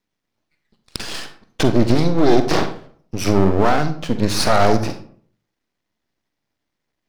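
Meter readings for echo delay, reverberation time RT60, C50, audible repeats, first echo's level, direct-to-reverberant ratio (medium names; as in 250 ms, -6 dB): no echo, 0.50 s, 10.0 dB, no echo, no echo, 8.5 dB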